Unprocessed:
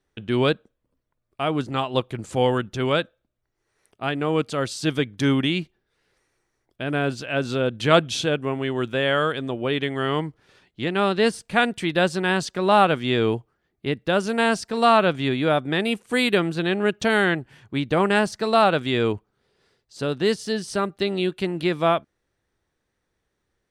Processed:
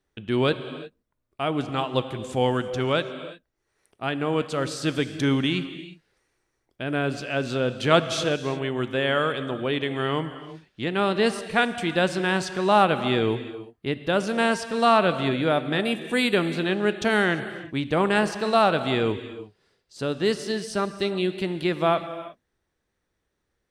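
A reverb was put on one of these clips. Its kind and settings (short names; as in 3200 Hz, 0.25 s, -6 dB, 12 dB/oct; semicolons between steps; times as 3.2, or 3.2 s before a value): non-linear reverb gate 0.38 s flat, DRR 10.5 dB; gain -2 dB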